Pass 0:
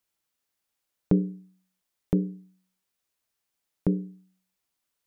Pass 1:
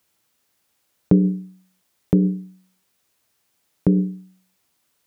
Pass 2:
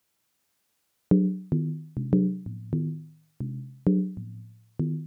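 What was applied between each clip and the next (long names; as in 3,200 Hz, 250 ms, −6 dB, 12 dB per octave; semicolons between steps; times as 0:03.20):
high-pass filter 66 Hz; in parallel at −1 dB: compressor whose output falls as the input rises −32 dBFS, ratio −1; on the sum: low-shelf EQ 430 Hz +3.5 dB; level +3.5 dB
delay with pitch and tempo change per echo 197 ms, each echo −3 semitones, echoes 3, each echo −6 dB; level −5.5 dB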